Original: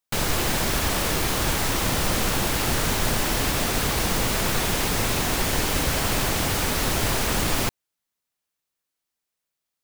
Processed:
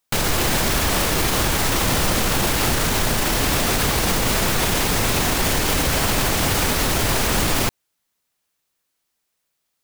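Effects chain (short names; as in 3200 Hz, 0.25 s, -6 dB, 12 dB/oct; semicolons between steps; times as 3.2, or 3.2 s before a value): limiter -18.5 dBFS, peak gain reduction 8 dB; gain +8.5 dB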